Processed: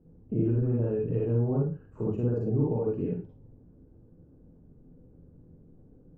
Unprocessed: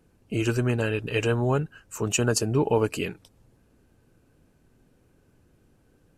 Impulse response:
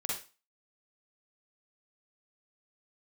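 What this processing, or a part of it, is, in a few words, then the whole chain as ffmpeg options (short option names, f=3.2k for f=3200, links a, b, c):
television next door: -filter_complex "[0:a]acompressor=threshold=-31dB:ratio=3,lowpass=400[a];[1:a]atrim=start_sample=2205[b];[a][b]afir=irnorm=-1:irlink=0,volume=5dB"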